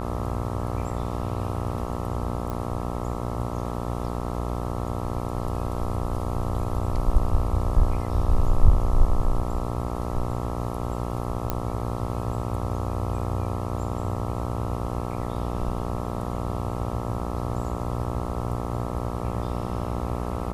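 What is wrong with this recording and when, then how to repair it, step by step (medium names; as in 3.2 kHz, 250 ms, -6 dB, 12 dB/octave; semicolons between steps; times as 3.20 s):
buzz 60 Hz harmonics 22 -30 dBFS
2.50 s: pop -19 dBFS
11.50 s: pop -11 dBFS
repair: de-click; de-hum 60 Hz, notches 22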